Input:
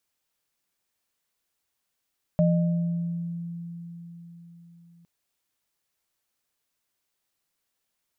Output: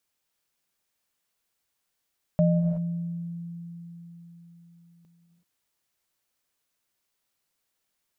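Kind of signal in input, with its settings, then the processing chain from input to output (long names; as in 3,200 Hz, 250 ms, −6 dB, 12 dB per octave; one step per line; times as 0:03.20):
inharmonic partials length 2.66 s, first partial 170 Hz, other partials 610 Hz, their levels −4 dB, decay 4.54 s, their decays 1.17 s, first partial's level −17.5 dB
reverb whose tail is shaped and stops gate 400 ms rising, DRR 7 dB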